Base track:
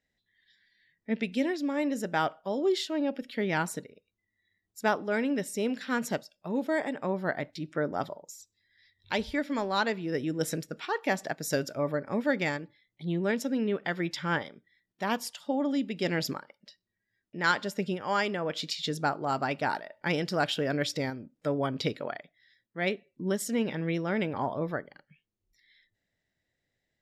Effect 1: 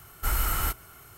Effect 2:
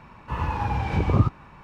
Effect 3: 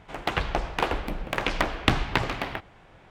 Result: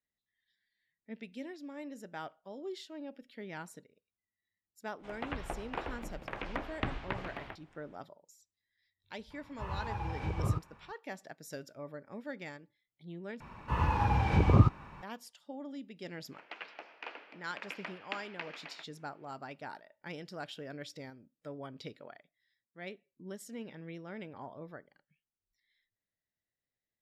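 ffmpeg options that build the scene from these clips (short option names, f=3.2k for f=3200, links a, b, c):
-filter_complex "[3:a]asplit=2[a][b];[2:a]asplit=2[c][d];[0:a]volume=-15dB[e];[a]acrossover=split=3000[f][g];[g]acompressor=threshold=-47dB:ratio=4:attack=1:release=60[h];[f][h]amix=inputs=2:normalize=0[i];[c]equalizer=f=250:w=2.4:g=-8[j];[b]highpass=f=340:w=0.5412,highpass=f=340:w=1.3066,equalizer=f=370:t=q:w=4:g=-9,equalizer=f=530:t=q:w=4:g=-5,equalizer=f=770:t=q:w=4:g=-6,equalizer=f=1.1k:t=q:w=4:g=-5,equalizer=f=2.5k:t=q:w=4:g=5,equalizer=f=3.7k:t=q:w=4:g=-7,lowpass=f=4.9k:w=0.5412,lowpass=f=4.9k:w=1.3066[k];[e]asplit=2[l][m];[l]atrim=end=13.404[n];[d]atrim=end=1.63,asetpts=PTS-STARTPTS,volume=-2.5dB[o];[m]atrim=start=15.026[p];[i]atrim=end=3.1,asetpts=PTS-STARTPTS,volume=-12.5dB,afade=t=in:d=0.1,afade=t=out:st=3:d=0.1,adelay=4950[q];[j]atrim=end=1.63,asetpts=PTS-STARTPTS,volume=-11.5dB,afade=t=in:d=0.004:c=hsin,afade=t=out:st=1.626:d=0.004:c=hsin,adelay=410130S[r];[k]atrim=end=3.1,asetpts=PTS-STARTPTS,volume=-16dB,afade=t=in:d=0.004:c=hsin,afade=t=out:st=3.096:d=0.004:c=hsin,adelay=16240[s];[n][o]acrossfade=d=0.004:c1=hsin:c2=hsin[t];[t][p]acrossfade=d=0.004:c1=hsin:c2=hsin[u];[u][q][r][s]amix=inputs=4:normalize=0"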